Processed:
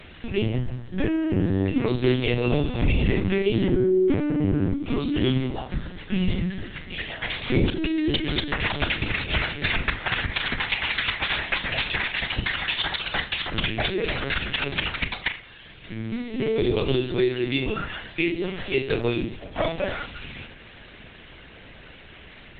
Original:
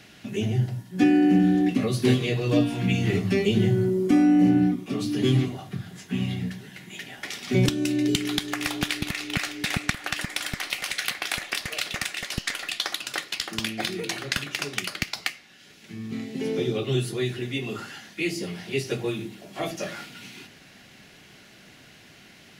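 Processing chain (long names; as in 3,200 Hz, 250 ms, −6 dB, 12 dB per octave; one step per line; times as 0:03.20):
mains-hum notches 50/100/150/200/250/300/350/400/450 Hz
downward compressor 3 to 1, threshold −26 dBFS, peak gain reduction 8.5 dB
flutter between parallel walls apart 7.3 metres, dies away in 0.25 s
linear-prediction vocoder at 8 kHz pitch kept
level +7 dB
Opus 24 kbit/s 48,000 Hz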